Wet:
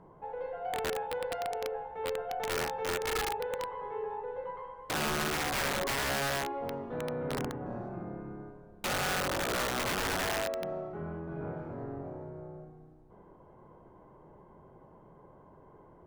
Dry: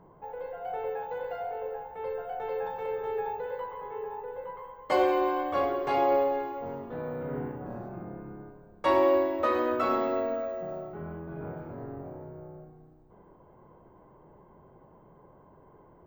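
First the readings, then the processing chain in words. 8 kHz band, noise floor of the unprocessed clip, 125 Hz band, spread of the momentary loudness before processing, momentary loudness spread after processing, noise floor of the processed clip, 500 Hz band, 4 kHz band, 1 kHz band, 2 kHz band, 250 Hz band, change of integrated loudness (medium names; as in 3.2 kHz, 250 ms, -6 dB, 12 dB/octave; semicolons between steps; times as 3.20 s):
no reading, -57 dBFS, +2.5 dB, 17 LU, 12 LU, -57 dBFS, -6.0 dB, +10.5 dB, -4.5 dB, +6.0 dB, -5.0 dB, -3.5 dB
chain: low-pass that closes with the level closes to 510 Hz, closed at -22 dBFS; peak limiter -22.5 dBFS, peak gain reduction 8.5 dB; integer overflow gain 26.5 dB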